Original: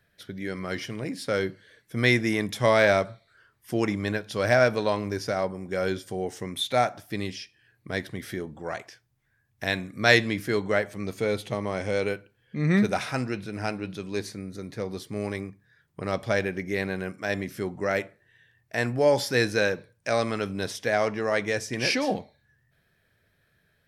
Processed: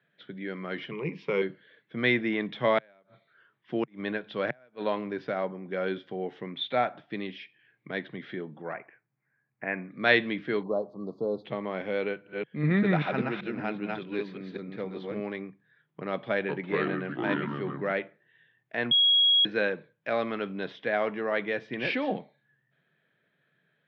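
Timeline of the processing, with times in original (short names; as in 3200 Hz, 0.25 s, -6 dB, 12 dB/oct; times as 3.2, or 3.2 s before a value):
0.91–1.42 ripple EQ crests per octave 0.77, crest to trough 17 dB
2.78–4.84 flipped gate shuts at -13 dBFS, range -35 dB
7.38–7.91 bell 2200 Hz +10.5 dB 0.25 oct
8.73–9.91 elliptic low-pass 2400 Hz
10.63–11.45 Chebyshev band-stop 1100–4400 Hz, order 4
12.05–15.22 reverse delay 0.194 s, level -1.5 dB
16.12–17.92 echoes that change speed 0.368 s, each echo -5 st, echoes 2
18.91–19.45 bleep 3310 Hz -15.5 dBFS
whole clip: Chebyshev band-pass 140–3500 Hz, order 4; gain -2.5 dB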